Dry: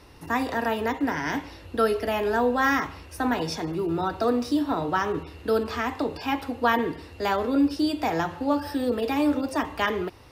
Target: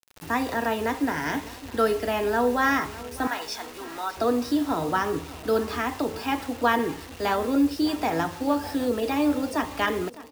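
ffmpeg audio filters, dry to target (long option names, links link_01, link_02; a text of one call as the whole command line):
ffmpeg -i in.wav -filter_complex "[0:a]asettb=1/sr,asplit=3[link_01][link_02][link_03];[link_01]atrim=end=3.274[link_04];[link_02]atrim=start=3.27:end=4.17,asetpts=PTS-STARTPTS,afade=type=in:duration=0.004:curve=qsin,afade=type=out:start_time=0.896:duration=0.004:curve=qsin,highpass=820[link_05];[link_03]atrim=start=4.166[link_06];[link_04][link_05]acrossfade=duration=0.004:curve1=hsin:curve2=qsin[link_07];[link_07][link_06]acrossfade=duration=0.004:curve1=qsin:curve2=hsin,acrusher=bits=6:mix=0:aa=0.000001,asplit=2[link_08][link_09];[link_09]aecho=0:1:607|1214|1821|2428:0.126|0.0655|0.034|0.0177[link_10];[link_08][link_10]amix=inputs=2:normalize=0" out.wav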